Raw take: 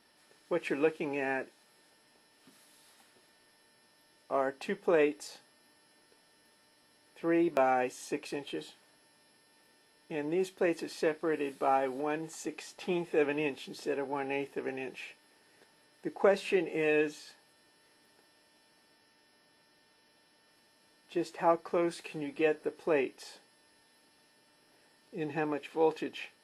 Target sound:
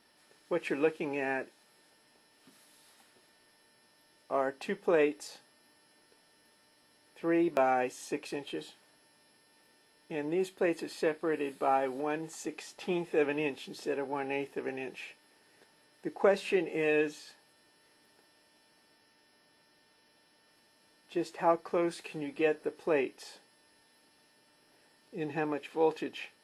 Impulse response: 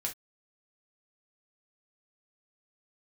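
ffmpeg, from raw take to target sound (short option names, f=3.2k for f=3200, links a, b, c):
-filter_complex "[0:a]asettb=1/sr,asplit=3[a][b][c];[a]atrim=end=10.304[d];[b]atrim=start=10.3:end=11.8,asetpts=PTS-STARTPTS,afade=t=in:d=0.004:c=qsin,afade=t=out:st=1.496:d=0.004:c=qsin,bandreject=f=5.7k:w=7.4[e];[c]atrim=start=11.796[f];[d][e]acrossfade=d=0.004:c1=hsin:c2=qsin[g];[g][f]acrossfade=d=0.004:c1=qsin:c2=hsin"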